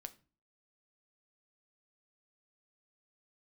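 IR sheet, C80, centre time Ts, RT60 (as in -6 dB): 23.5 dB, 4 ms, 0.35 s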